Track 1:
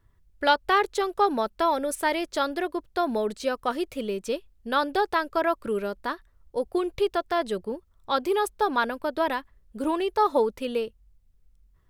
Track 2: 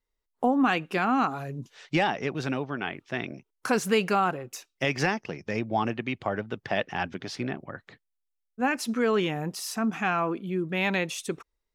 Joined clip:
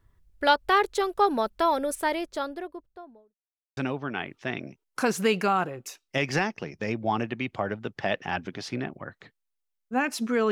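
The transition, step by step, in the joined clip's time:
track 1
1.71–3.39 s: studio fade out
3.39–3.77 s: mute
3.77 s: go over to track 2 from 2.44 s

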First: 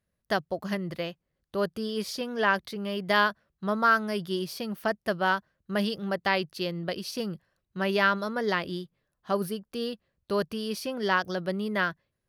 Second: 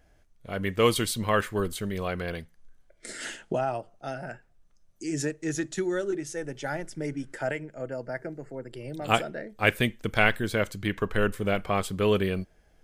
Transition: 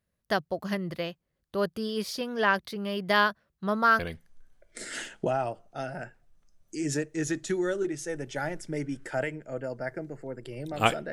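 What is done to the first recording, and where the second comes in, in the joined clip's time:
first
3.99 s: go over to second from 2.27 s

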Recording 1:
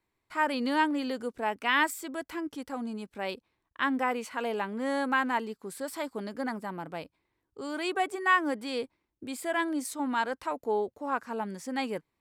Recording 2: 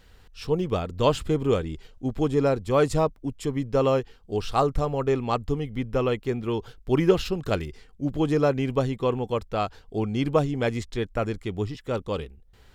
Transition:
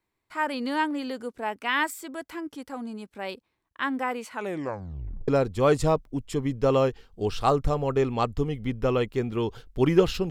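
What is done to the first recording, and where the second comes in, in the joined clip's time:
recording 1
4.31 s: tape stop 0.97 s
5.28 s: go over to recording 2 from 2.39 s

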